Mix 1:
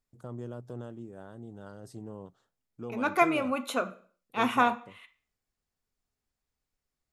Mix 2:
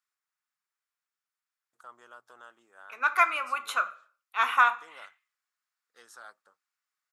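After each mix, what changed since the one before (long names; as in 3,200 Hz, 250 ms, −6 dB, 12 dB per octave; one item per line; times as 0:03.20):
first voice: entry +1.60 s
master: add high-pass with resonance 1,300 Hz, resonance Q 2.5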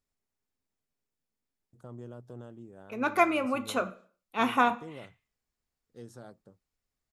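first voice −4.5 dB
master: remove high-pass with resonance 1,300 Hz, resonance Q 2.5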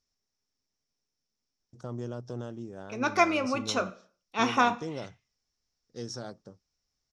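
first voice +7.5 dB
master: add low-pass with resonance 5,600 Hz, resonance Q 7.9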